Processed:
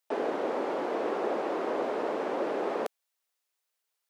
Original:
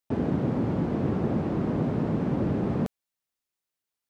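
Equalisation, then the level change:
high-pass filter 430 Hz 24 dB per octave
+5.0 dB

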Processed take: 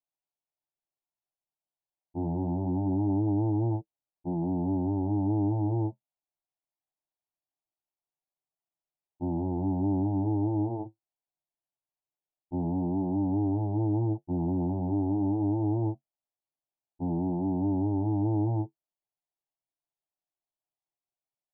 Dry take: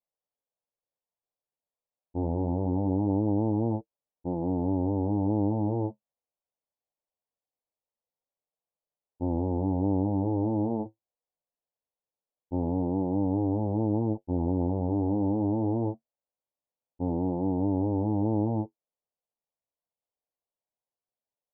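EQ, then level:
high-frequency loss of the air 390 metres
phaser with its sweep stopped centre 330 Hz, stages 8
dynamic equaliser 150 Hz, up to +7 dB, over −48 dBFS, Q 1.3
0.0 dB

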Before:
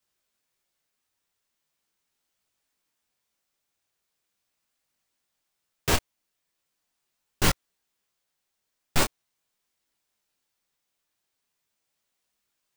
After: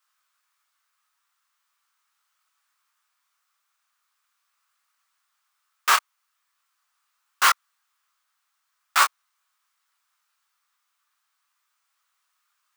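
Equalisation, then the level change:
high-pass with resonance 1,200 Hz, resonance Q 4.3
+3.5 dB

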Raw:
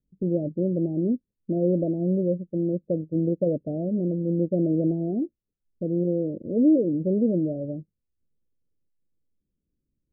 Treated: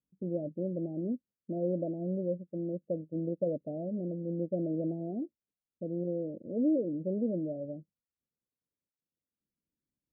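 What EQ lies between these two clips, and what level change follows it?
resonant band-pass 530 Hz, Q 0.98
parametric band 410 Hz −9.5 dB 1.1 octaves
0.0 dB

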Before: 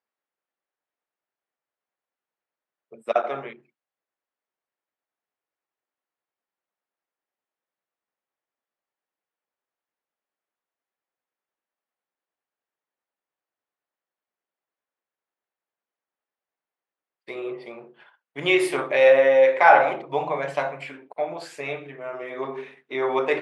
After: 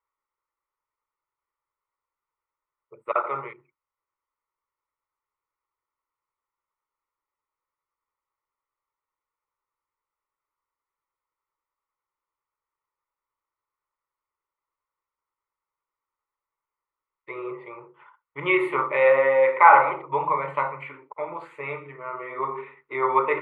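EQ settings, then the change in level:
RIAA equalisation playback
flat-topped bell 1,300 Hz +14.5 dB
phaser with its sweep stopped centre 1,100 Hz, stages 8
−5.0 dB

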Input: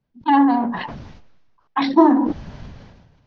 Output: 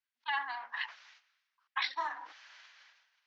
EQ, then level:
four-pole ladder high-pass 1,300 Hz, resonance 25%
0.0 dB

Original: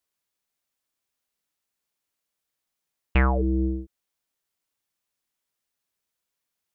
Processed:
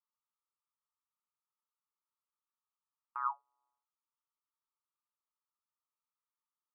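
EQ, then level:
Chebyshev high-pass with heavy ripple 870 Hz, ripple 6 dB
Chebyshev low-pass filter 1,300 Hz, order 5
0.0 dB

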